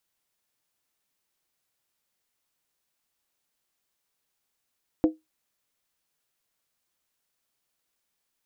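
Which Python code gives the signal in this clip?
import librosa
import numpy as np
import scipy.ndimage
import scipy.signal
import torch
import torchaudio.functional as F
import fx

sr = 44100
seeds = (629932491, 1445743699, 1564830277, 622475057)

y = fx.strike_skin(sr, length_s=0.63, level_db=-13.0, hz=315.0, decay_s=0.18, tilt_db=9, modes=5)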